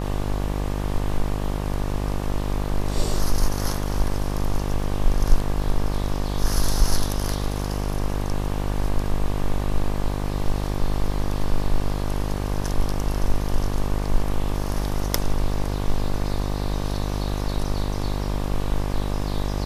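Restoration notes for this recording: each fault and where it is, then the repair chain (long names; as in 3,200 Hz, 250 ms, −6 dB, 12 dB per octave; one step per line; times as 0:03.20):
mains buzz 50 Hz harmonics 24 −26 dBFS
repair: hum removal 50 Hz, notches 24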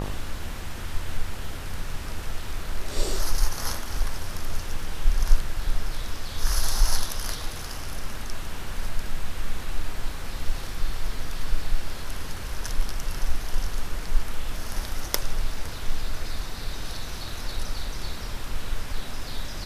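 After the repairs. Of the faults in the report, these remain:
none of them is left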